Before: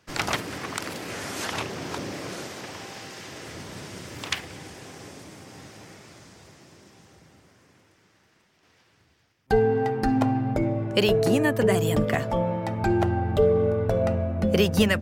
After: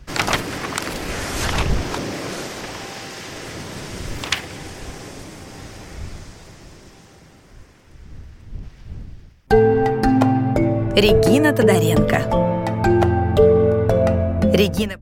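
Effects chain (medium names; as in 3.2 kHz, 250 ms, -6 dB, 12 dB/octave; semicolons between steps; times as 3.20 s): fade out at the end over 0.50 s; wind noise 81 Hz -40 dBFS; trim +7 dB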